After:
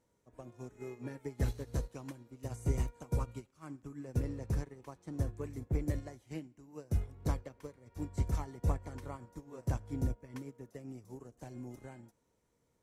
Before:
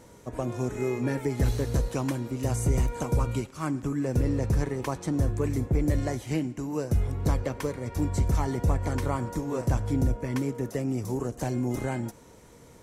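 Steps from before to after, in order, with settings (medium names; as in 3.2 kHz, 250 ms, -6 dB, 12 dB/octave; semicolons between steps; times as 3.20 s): upward expansion 2.5:1, over -33 dBFS; trim -5 dB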